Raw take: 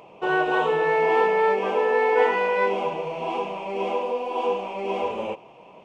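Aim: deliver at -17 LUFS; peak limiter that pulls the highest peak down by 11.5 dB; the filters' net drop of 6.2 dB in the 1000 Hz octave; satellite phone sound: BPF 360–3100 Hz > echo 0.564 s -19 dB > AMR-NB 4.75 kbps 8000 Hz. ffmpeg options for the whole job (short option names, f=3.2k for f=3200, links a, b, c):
-af "equalizer=f=1k:t=o:g=-7.5,alimiter=limit=-20.5dB:level=0:latency=1,highpass=360,lowpass=3.1k,aecho=1:1:564:0.112,volume=15.5dB" -ar 8000 -c:a libopencore_amrnb -b:a 4750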